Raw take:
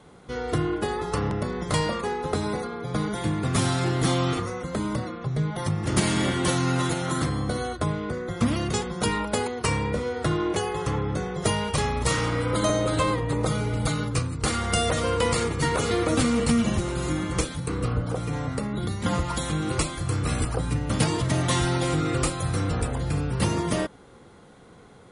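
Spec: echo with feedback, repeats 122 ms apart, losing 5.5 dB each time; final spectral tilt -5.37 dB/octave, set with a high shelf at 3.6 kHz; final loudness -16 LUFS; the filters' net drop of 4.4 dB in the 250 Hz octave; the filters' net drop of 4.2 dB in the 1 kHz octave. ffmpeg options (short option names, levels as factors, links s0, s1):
-af "equalizer=f=250:t=o:g=-6,equalizer=f=1000:t=o:g=-4.5,highshelf=f=3600:g=-5.5,aecho=1:1:122|244|366|488|610|732|854:0.531|0.281|0.149|0.079|0.0419|0.0222|0.0118,volume=3.55"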